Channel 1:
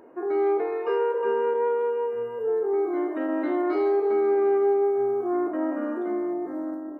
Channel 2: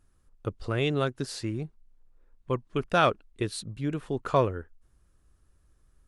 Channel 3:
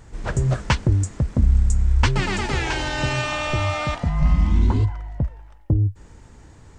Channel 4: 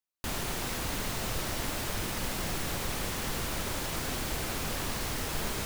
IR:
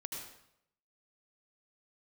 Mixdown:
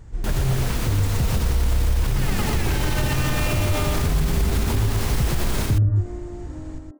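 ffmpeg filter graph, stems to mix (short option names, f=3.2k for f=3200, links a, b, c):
-filter_complex "[0:a]volume=-19dB[a];[2:a]alimiter=limit=-17.5dB:level=0:latency=1,volume=-6dB,asplit=2[b][c];[c]volume=-5.5dB[d];[3:a]volume=1dB,asplit=2[e][f];[f]volume=-3dB[g];[d][g]amix=inputs=2:normalize=0,aecho=0:1:123:1[h];[a][b][e][h]amix=inputs=4:normalize=0,lowshelf=f=220:g=11,dynaudnorm=f=690:g=3:m=11.5dB,alimiter=limit=-12.5dB:level=0:latency=1:release=58"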